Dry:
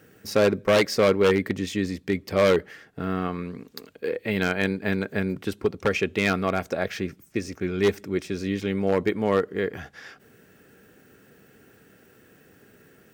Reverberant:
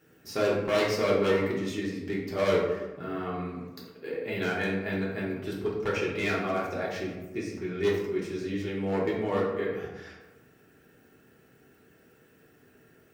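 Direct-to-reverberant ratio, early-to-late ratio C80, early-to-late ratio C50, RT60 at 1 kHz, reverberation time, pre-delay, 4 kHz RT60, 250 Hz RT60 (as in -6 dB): -6.0 dB, 5.0 dB, 2.5 dB, 1.1 s, 1.2 s, 3 ms, 0.60 s, 1.2 s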